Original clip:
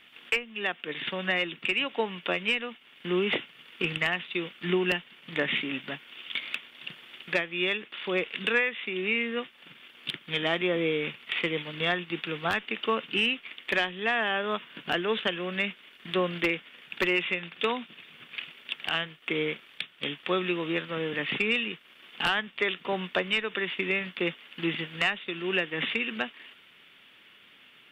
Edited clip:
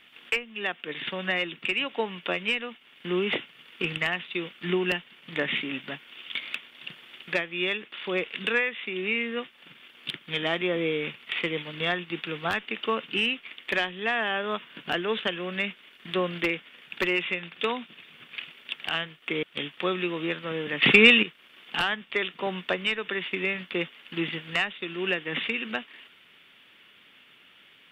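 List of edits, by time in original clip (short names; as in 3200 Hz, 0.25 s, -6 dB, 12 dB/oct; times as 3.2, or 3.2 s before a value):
19.43–19.89 cut
21.28–21.69 gain +11.5 dB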